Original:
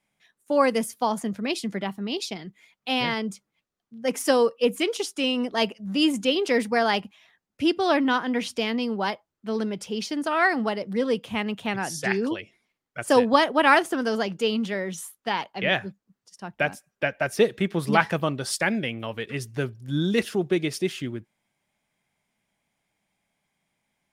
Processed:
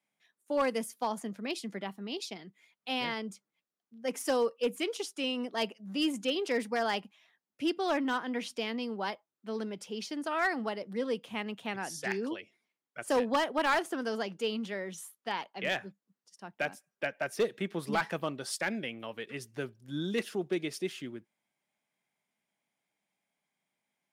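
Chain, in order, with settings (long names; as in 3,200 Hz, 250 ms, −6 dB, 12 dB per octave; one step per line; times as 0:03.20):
high-pass filter 190 Hz 12 dB per octave
gain into a clipping stage and back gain 14 dB
level −8 dB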